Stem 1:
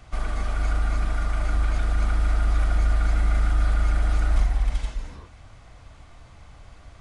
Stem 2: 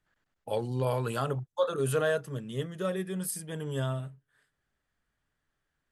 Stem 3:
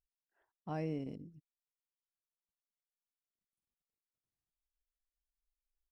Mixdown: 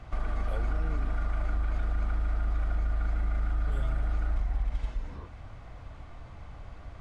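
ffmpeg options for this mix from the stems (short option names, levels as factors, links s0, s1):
-filter_complex "[0:a]lowpass=f=1700:p=1,acompressor=threshold=0.1:ratio=6,volume=1.33[s0];[1:a]volume=0.531,asplit=3[s1][s2][s3];[s1]atrim=end=0.72,asetpts=PTS-STARTPTS,afade=t=out:st=0.716:d=0.004:c=hsin[s4];[s2]atrim=start=0.72:end=3.67,asetpts=PTS-STARTPTS,volume=0[s5];[s3]atrim=start=3.67,asetpts=PTS-STARTPTS,afade=t=in:d=0.004:c=hsin[s6];[s4][s5][s6]concat=n=3:v=0:a=1[s7];[2:a]volume=0.944[s8];[s0][s7][s8]amix=inputs=3:normalize=0,acompressor=threshold=0.0158:ratio=1.5"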